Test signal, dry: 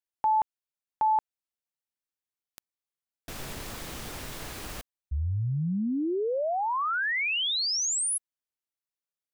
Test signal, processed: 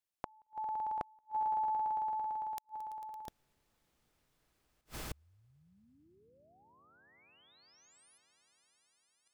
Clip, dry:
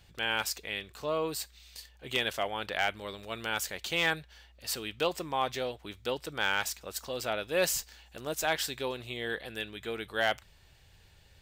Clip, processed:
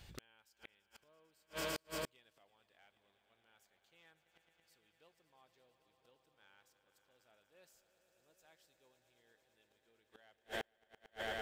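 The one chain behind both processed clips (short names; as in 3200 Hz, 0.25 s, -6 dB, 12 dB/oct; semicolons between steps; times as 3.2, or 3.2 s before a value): swelling echo 0.112 s, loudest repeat 5, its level -15 dB; flipped gate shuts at -29 dBFS, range -40 dB; gain +1 dB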